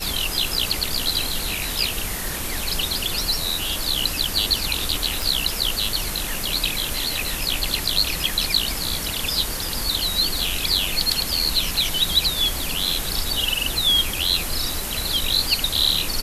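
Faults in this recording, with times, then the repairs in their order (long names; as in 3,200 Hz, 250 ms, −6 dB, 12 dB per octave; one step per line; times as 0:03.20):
0:05.22: click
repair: click removal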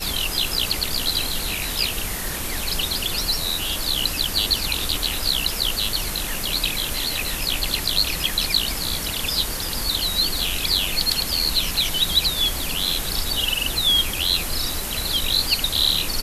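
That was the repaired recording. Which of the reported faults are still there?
none of them is left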